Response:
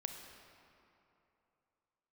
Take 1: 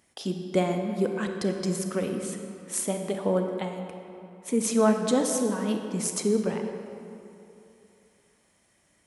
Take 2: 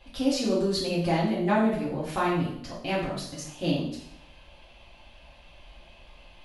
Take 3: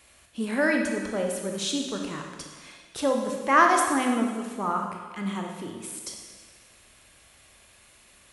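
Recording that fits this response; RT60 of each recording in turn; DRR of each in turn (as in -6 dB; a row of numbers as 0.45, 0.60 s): 1; 2.9, 0.70, 1.5 s; 4.5, -7.5, 1.5 dB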